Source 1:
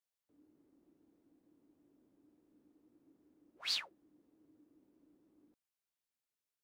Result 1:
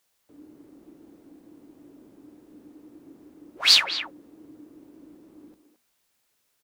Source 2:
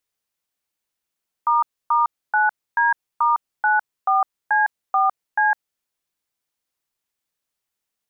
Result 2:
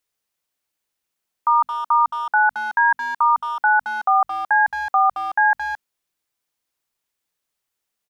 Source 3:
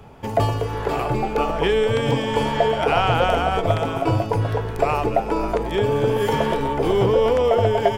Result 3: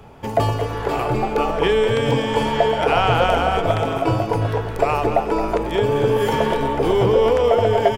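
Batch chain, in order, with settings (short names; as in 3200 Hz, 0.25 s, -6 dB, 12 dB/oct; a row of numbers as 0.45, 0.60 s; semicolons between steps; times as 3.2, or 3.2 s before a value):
notches 50/100/150/200/250 Hz; speakerphone echo 0.22 s, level -9 dB; match loudness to -19 LUFS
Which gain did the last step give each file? +20.0, +2.0, +1.5 dB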